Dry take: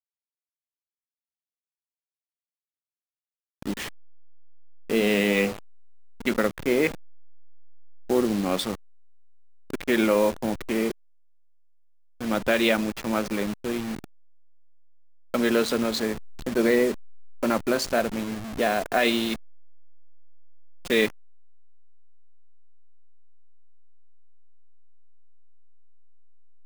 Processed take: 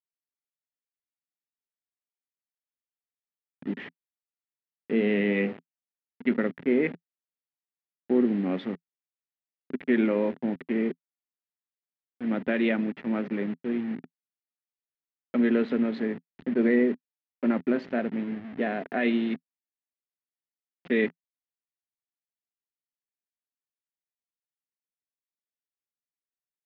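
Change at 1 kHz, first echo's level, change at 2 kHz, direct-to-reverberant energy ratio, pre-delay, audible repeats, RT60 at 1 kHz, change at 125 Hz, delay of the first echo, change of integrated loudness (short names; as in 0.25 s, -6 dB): -9.0 dB, none, -5.0 dB, none, none, none, none, -2.0 dB, none, -2.5 dB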